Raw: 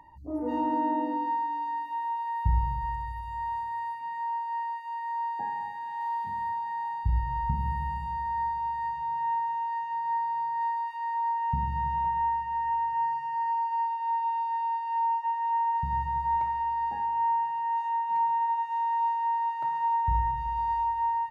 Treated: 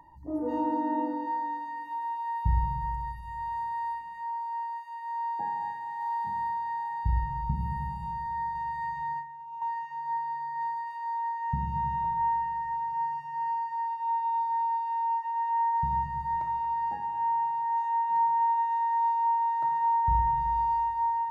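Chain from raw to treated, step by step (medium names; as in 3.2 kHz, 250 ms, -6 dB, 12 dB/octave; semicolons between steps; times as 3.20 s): peaking EQ 2.5 kHz -8 dB 0.84 oct; on a send: band-passed feedback delay 229 ms, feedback 67%, band-pass 1.5 kHz, level -8 dB; 8.55–9.62 s: on the sum: compressor with a negative ratio -33 dBFS, ratio -0.5; simulated room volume 3200 m³, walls furnished, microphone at 0.72 m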